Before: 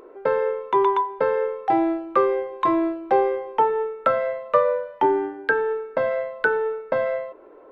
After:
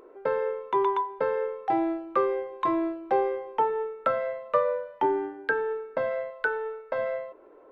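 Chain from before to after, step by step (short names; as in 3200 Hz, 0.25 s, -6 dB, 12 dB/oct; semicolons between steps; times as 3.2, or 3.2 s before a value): 6.3–6.98 bell 190 Hz -13 dB 1.4 oct; gain -5.5 dB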